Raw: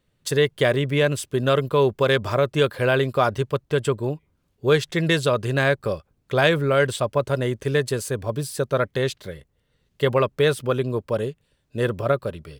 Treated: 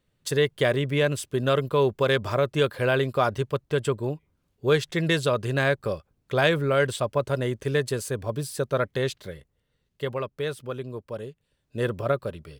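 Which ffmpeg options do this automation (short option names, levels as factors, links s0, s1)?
-af "volume=1.58,afade=t=out:st=9.32:d=0.84:silence=0.421697,afade=t=in:st=11.27:d=0.5:silence=0.446684"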